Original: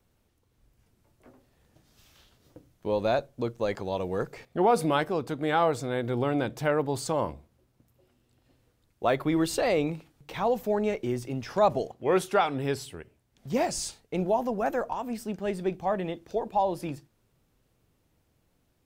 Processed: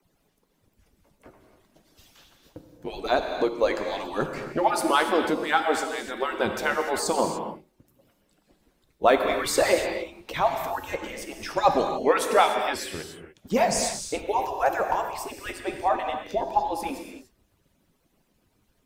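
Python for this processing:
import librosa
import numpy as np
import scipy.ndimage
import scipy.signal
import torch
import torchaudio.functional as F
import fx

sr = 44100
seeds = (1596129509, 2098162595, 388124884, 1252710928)

y = fx.hpss_only(x, sr, part='percussive')
y = fx.rev_gated(y, sr, seeds[0], gate_ms=320, shape='flat', drr_db=4.0)
y = F.gain(torch.from_numpy(y), 6.5).numpy()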